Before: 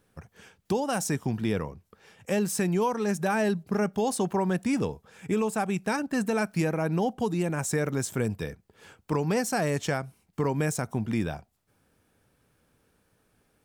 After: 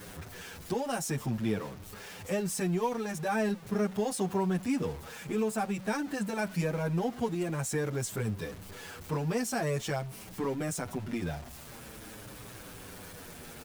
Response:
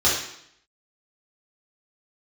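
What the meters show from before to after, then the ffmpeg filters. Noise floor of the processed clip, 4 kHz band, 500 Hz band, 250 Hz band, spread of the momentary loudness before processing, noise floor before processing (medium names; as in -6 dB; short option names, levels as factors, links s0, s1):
-47 dBFS, -2.5 dB, -4.5 dB, -4.5 dB, 6 LU, -71 dBFS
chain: -filter_complex "[0:a]aeval=exprs='val(0)+0.5*0.0188*sgn(val(0))':c=same,asplit=2[s0][s1];[s1]adelay=7.6,afreqshift=-0.47[s2];[s0][s2]amix=inputs=2:normalize=1,volume=0.708"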